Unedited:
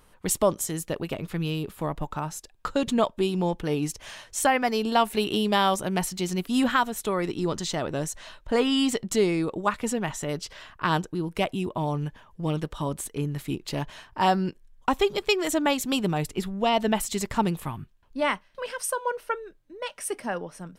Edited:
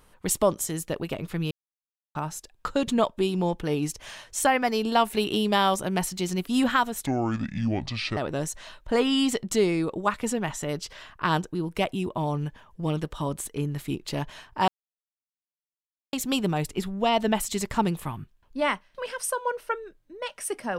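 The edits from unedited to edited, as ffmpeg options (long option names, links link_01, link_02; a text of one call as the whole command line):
ffmpeg -i in.wav -filter_complex "[0:a]asplit=7[link_01][link_02][link_03][link_04][link_05][link_06][link_07];[link_01]atrim=end=1.51,asetpts=PTS-STARTPTS,afade=type=out:start_time=1.506:duration=0.004:curve=hsin[link_08];[link_02]atrim=start=1.51:end=2.15,asetpts=PTS-STARTPTS,volume=0[link_09];[link_03]atrim=start=2.15:end=7.064,asetpts=PTS-STARTPTS,afade=type=in:duration=0.004:curve=hsin[link_10];[link_04]atrim=start=7.06:end=7.77,asetpts=PTS-STARTPTS,asetrate=28224,aresample=44100,atrim=end_sample=48923,asetpts=PTS-STARTPTS[link_11];[link_05]atrim=start=7.766:end=14.28,asetpts=PTS-STARTPTS,afade=type=out:start_time=6.51:duration=0.004:curve=hsin[link_12];[link_06]atrim=start=14.28:end=15.73,asetpts=PTS-STARTPTS,volume=0[link_13];[link_07]atrim=start=15.73,asetpts=PTS-STARTPTS,afade=type=in:duration=0.004:curve=hsin[link_14];[link_08][link_09][link_10]concat=n=3:v=0:a=1[link_15];[link_15][link_11]acrossfade=duration=0.004:curve1=hsin:curve2=hsin[link_16];[link_12][link_13][link_14]concat=n=3:v=0:a=1[link_17];[link_16][link_17]acrossfade=duration=0.004:curve1=hsin:curve2=hsin" out.wav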